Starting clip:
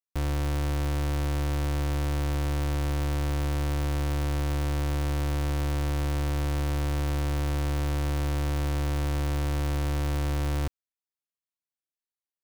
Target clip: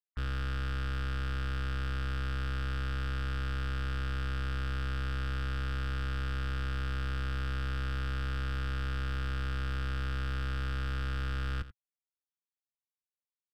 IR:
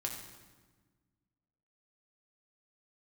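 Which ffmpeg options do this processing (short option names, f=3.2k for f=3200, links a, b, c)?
-af "afftdn=nr=23:nf=-41,firequalizer=gain_entry='entry(120,0);entry(200,-11);entry(290,-30);entry(420,-22);entry(970,-4);entry(1500,10);entry(2700,4);entry(4000,11);entry(5900,-6);entry(11000,-27)':delay=0.05:min_phase=1,volume=31.5dB,asoftclip=hard,volume=-31.5dB,aecho=1:1:78:0.178,asetrate=40517,aresample=44100"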